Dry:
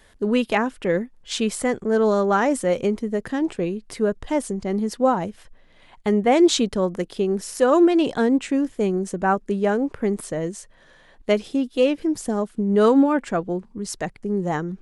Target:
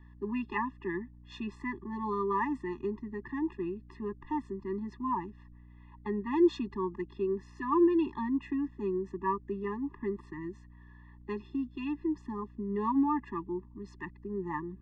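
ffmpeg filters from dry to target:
-filter_complex "[0:a]acrossover=split=340 2000:gain=0.224 1 0.178[a][b][c];[a][b][c]amix=inputs=3:normalize=0,aeval=exprs='val(0)+0.00398*(sin(2*PI*60*n/s)+sin(2*PI*2*60*n/s)/2+sin(2*PI*3*60*n/s)/3+sin(2*PI*4*60*n/s)/4+sin(2*PI*5*60*n/s)/5)':c=same,acrossover=split=600|5300[d][e][f];[f]acrusher=bits=3:mix=0:aa=0.000001[g];[d][e][g]amix=inputs=3:normalize=0,afftfilt=real='re*eq(mod(floor(b*sr/1024/410),2),0)':imag='im*eq(mod(floor(b*sr/1024/410),2),0)':win_size=1024:overlap=0.75,volume=-4dB"

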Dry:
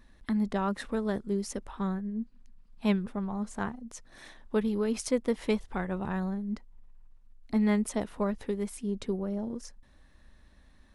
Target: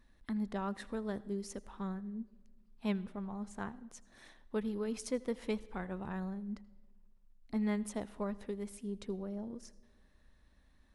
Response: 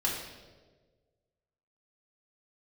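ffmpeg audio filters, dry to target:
-filter_complex "[0:a]asplit=2[a][b];[1:a]atrim=start_sample=2205,adelay=79[c];[b][c]afir=irnorm=-1:irlink=0,volume=-26.5dB[d];[a][d]amix=inputs=2:normalize=0,volume=-8dB"

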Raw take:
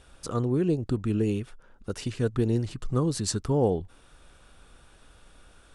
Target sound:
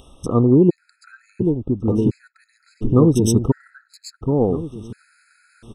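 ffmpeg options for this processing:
-filter_complex "[0:a]agate=range=-18dB:threshold=-43dB:ratio=16:detection=peak,afwtdn=0.0178,equalizer=f=260:w=1.1:g=5.5,acompressor=mode=upward:threshold=-30dB:ratio=2.5,asplit=2[a][b];[b]adelay=781,lowpass=f=2.6k:p=1,volume=-6dB,asplit=2[c][d];[d]adelay=781,lowpass=f=2.6k:p=1,volume=0.35,asplit=2[e][f];[f]adelay=781,lowpass=f=2.6k:p=1,volume=0.35,asplit=2[g][h];[h]adelay=781,lowpass=f=2.6k:p=1,volume=0.35[i];[a][c][e][g][i]amix=inputs=5:normalize=0,afftfilt=real='re*gt(sin(2*PI*0.71*pts/sr)*(1-2*mod(floor(b*sr/1024/1300),2)),0)':imag='im*gt(sin(2*PI*0.71*pts/sr)*(1-2*mod(floor(b*sr/1024/1300),2)),0)':win_size=1024:overlap=0.75,volume=9dB"

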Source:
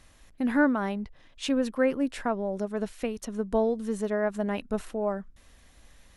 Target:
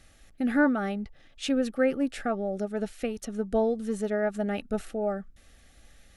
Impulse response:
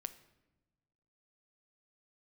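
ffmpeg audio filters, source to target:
-af "asuperstop=centerf=1000:order=20:qfactor=4.5"

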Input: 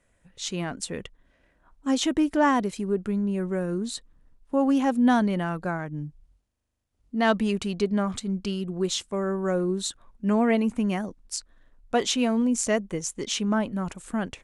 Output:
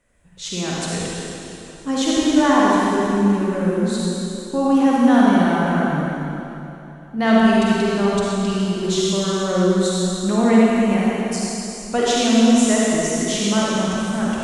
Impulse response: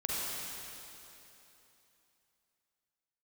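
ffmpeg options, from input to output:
-filter_complex "[1:a]atrim=start_sample=2205[a];[0:a][a]afir=irnorm=-1:irlink=0,volume=2dB"

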